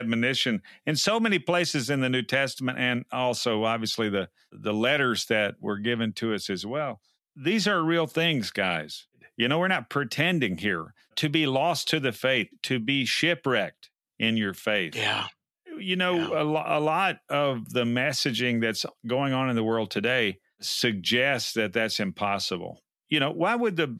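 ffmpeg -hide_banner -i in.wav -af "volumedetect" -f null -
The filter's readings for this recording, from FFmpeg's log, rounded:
mean_volume: -26.8 dB
max_volume: -9.3 dB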